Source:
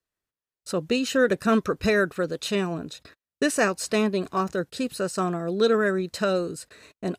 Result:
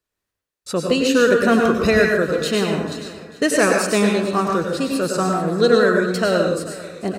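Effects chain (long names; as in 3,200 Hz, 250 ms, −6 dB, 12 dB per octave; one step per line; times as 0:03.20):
tape wow and flutter 89 cents
repeating echo 443 ms, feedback 44%, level −17 dB
dense smooth reverb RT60 0.63 s, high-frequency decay 0.85×, pre-delay 85 ms, DRR 1 dB
level +4.5 dB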